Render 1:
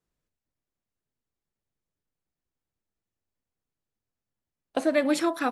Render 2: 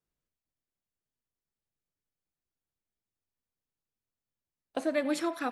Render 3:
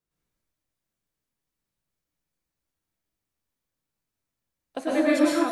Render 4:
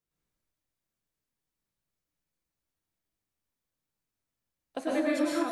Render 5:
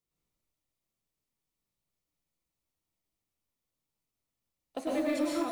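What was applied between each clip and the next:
feedback echo with a band-pass in the loop 90 ms, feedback 64%, band-pass 2,200 Hz, level −16 dB; level −6 dB
dense smooth reverb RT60 0.86 s, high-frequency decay 0.75×, pre-delay 95 ms, DRR −7 dB
downward compressor 3 to 1, threshold −22 dBFS, peak gain reduction 6 dB; level −3 dB
parametric band 1,600 Hz −12 dB 0.21 octaves; in parallel at −7 dB: gain into a clipping stage and back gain 34 dB; on the sum: noise that follows the level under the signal 31 dB; level −3.5 dB

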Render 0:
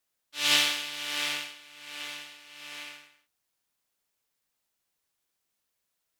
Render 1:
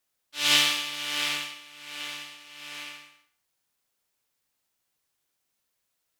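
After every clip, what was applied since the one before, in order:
reverb whose tail is shaped and stops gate 250 ms falling, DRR 8.5 dB
level +1.5 dB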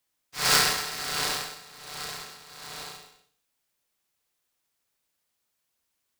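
ring modulator with a square carrier 1,600 Hz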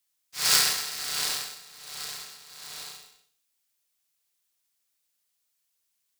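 high-shelf EQ 2,200 Hz +12 dB
level −9 dB

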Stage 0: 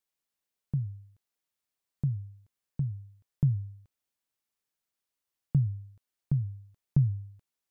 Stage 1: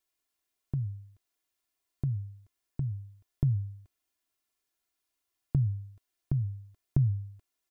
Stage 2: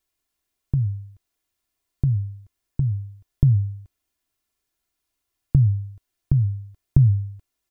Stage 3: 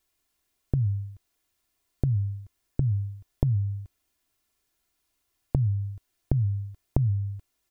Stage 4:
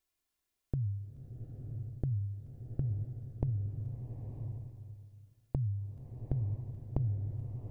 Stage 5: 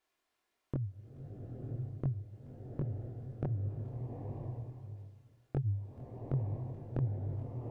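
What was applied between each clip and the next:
comb filter 2.9 ms; level +2 dB
low-shelf EQ 170 Hz +10.5 dB; level +3.5 dB
downward compressor 10 to 1, threshold −24 dBFS, peak gain reduction 15 dB; level +3.5 dB
slow-attack reverb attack 980 ms, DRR 4 dB; level −9 dB
multi-voice chorus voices 2, 1.5 Hz, delay 23 ms, depth 3 ms; mid-hump overdrive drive 24 dB, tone 1,000 Hz, clips at −19 dBFS

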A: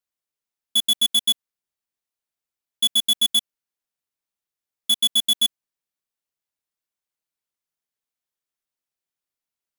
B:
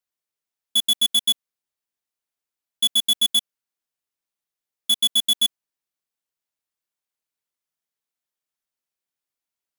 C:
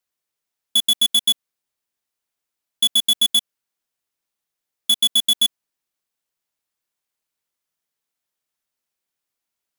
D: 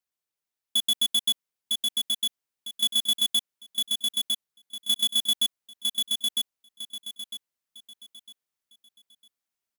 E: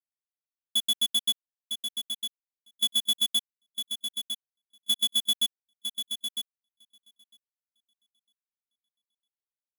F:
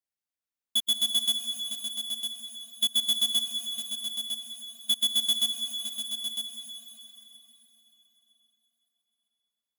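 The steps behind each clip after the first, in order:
low-shelf EQ 160 Hz −3.5 dB
downward compressor, threshold −20 dBFS, peak gain reduction 3 dB; level +5 dB
repeating echo 954 ms, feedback 30%, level −3 dB; level −7 dB
expander for the loud parts 2.5 to 1, over −39 dBFS
dense smooth reverb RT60 4.1 s, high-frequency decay 0.9×, pre-delay 110 ms, DRR 6 dB

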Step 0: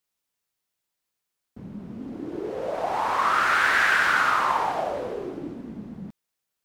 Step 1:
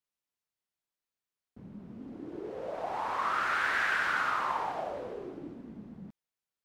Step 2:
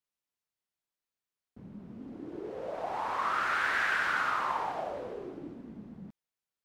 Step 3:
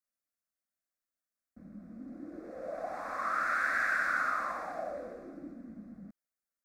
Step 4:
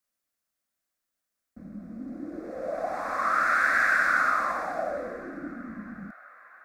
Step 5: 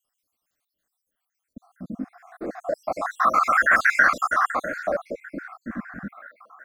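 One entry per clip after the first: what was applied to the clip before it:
high-shelf EQ 6,000 Hz −6 dB; level −8.5 dB
no processing that can be heard
phaser with its sweep stopped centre 610 Hz, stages 8
delay with a band-pass on its return 655 ms, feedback 72%, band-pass 1,400 Hz, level −22.5 dB; level +7.5 dB
time-frequency cells dropped at random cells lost 69%; level +9 dB

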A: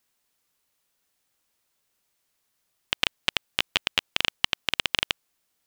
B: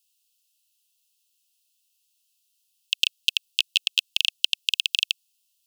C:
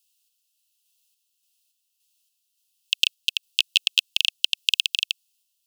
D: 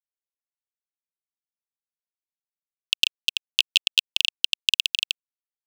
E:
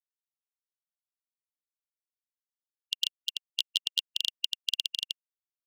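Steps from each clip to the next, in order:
Chebyshev high-pass filter 2,600 Hz, order 8; level +4.5 dB
sample-and-hold tremolo; level +3 dB
dead-zone distortion −47 dBFS
linear-phase brick-wall high-pass 2,800 Hz; level −8 dB

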